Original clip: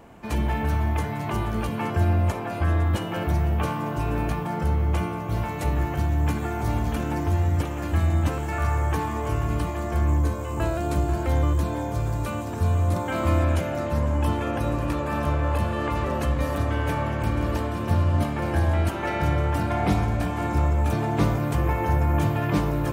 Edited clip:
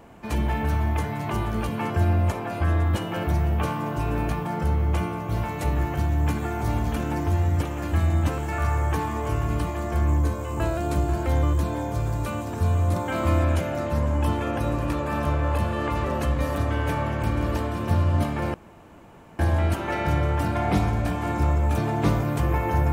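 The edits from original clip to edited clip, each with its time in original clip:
18.54 s: insert room tone 0.85 s

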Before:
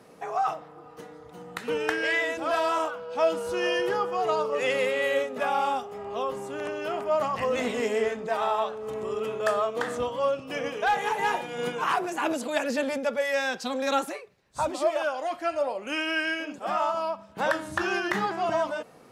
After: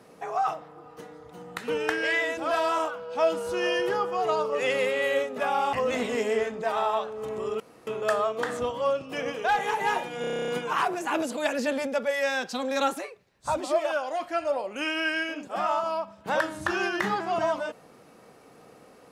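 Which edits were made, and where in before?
5.73–7.38 s: delete
9.25 s: insert room tone 0.27 s
11.59 s: stutter 0.03 s, 10 plays

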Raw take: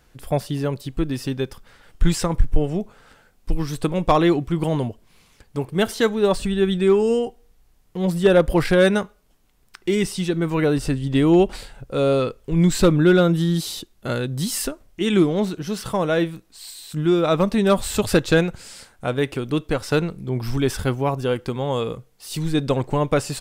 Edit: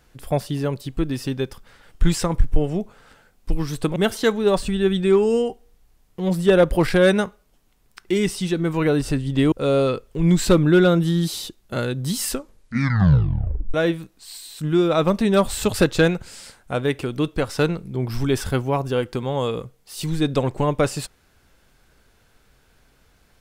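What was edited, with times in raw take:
3.96–5.73 s: delete
11.29–11.85 s: delete
14.62 s: tape stop 1.45 s

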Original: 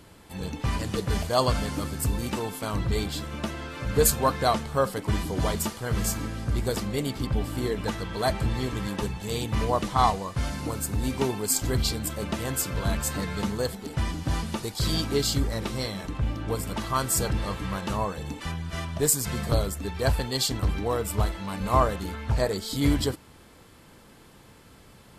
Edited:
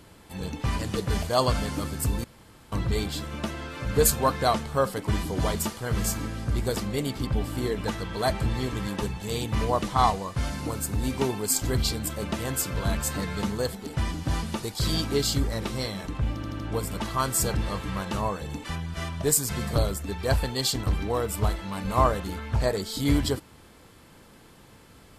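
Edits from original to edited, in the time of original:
2.24–2.72 s: room tone
16.35 s: stutter 0.08 s, 4 plays

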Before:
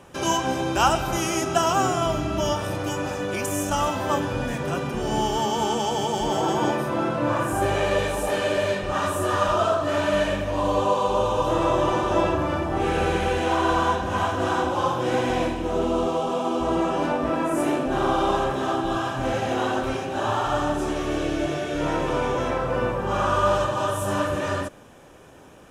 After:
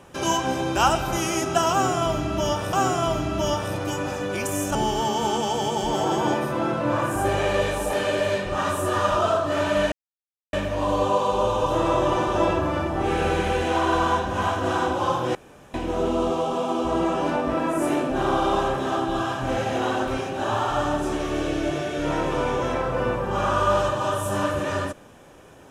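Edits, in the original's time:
1.72–2.73 s: loop, 2 plays
3.74–5.12 s: delete
10.29 s: insert silence 0.61 s
15.11–15.50 s: room tone

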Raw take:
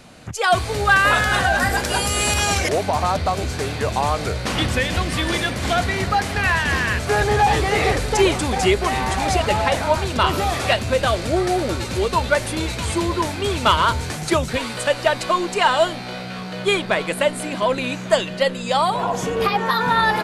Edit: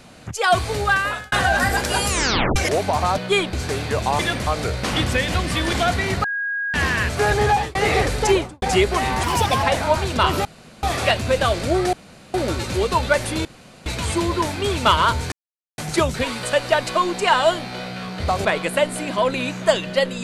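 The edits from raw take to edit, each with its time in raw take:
0.73–1.32 s: fade out linear
2.09 s: tape stop 0.47 s
3.18–3.43 s: swap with 16.54–16.89 s
5.35–5.63 s: move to 4.09 s
6.14–6.64 s: bleep 1.64 kHz -21.5 dBFS
7.39–7.65 s: fade out
8.16–8.52 s: studio fade out
9.13–9.63 s: speed 125%
10.45 s: insert room tone 0.38 s
11.55 s: insert room tone 0.41 s
12.66 s: insert room tone 0.41 s
14.12 s: insert silence 0.46 s

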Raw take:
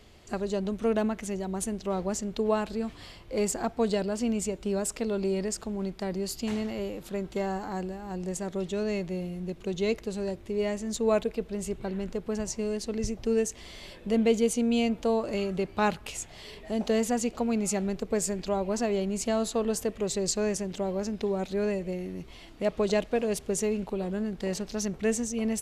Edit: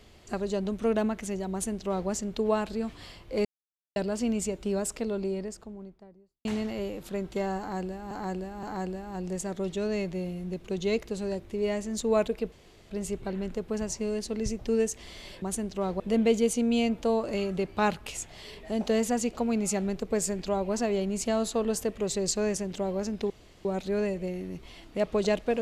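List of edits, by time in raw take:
1.51–2.09 s: copy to 14.00 s
3.45–3.96 s: mute
4.66–6.45 s: studio fade out
7.59–8.11 s: loop, 3 plays
11.48 s: insert room tone 0.38 s
21.30 s: insert room tone 0.35 s

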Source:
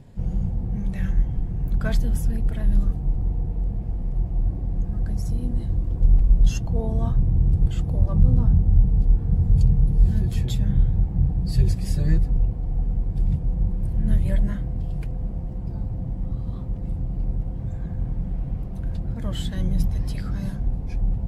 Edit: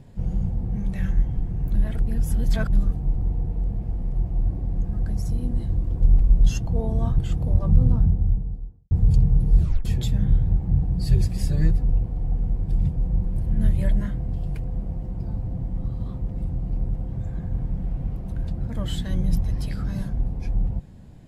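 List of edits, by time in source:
1.75–2.73 s: reverse
7.18–7.65 s: delete
8.26–9.38 s: studio fade out
10.07 s: tape stop 0.25 s

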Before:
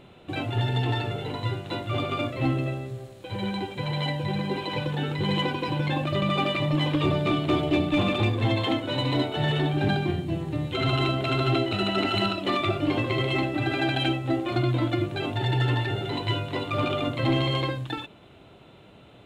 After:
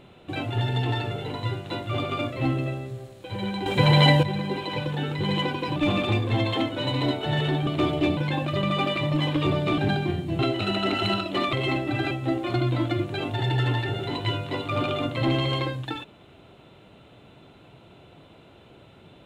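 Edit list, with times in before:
3.66–4.23 s: gain +11.5 dB
5.76–7.37 s: swap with 7.87–9.78 s
10.39–11.51 s: delete
12.65–13.20 s: delete
13.78–14.13 s: delete

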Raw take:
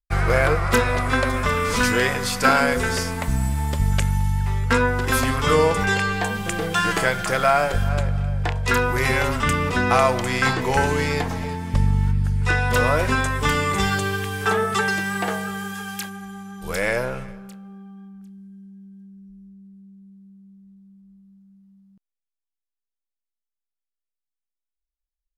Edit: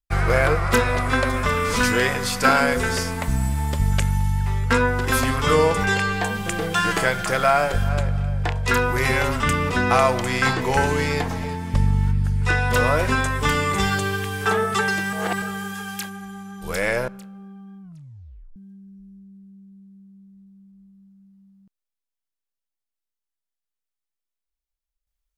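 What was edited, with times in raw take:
15.13–15.42 s: reverse
17.08–17.38 s: delete
18.12 s: tape stop 0.74 s

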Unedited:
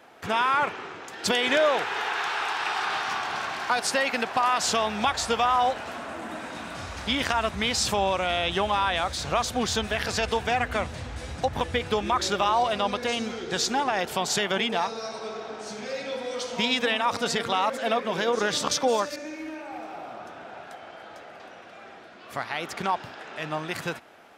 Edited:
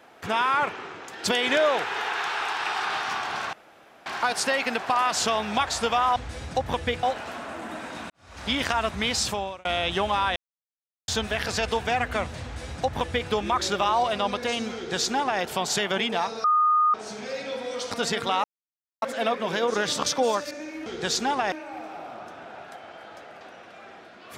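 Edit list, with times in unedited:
3.53 s: insert room tone 0.53 s
6.70–7.07 s: fade in quadratic
7.79–8.25 s: fade out
8.96–9.68 s: mute
11.03–11.90 s: copy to 5.63 s
13.35–14.01 s: copy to 19.51 s
15.04–15.54 s: bleep 1.23 kHz -17 dBFS
16.51–17.14 s: delete
17.67 s: insert silence 0.58 s

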